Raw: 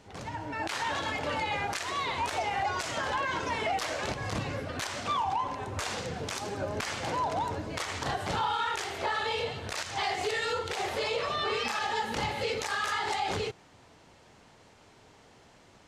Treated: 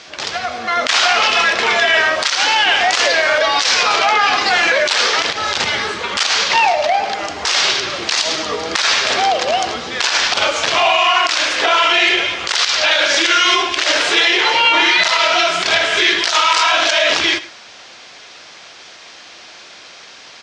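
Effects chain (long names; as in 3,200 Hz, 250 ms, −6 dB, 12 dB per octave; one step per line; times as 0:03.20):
meter weighting curve ITU-R 468
change of speed 0.777×
single-tap delay 106 ms −17 dB
boost into a limiter +17.5 dB
level −2.5 dB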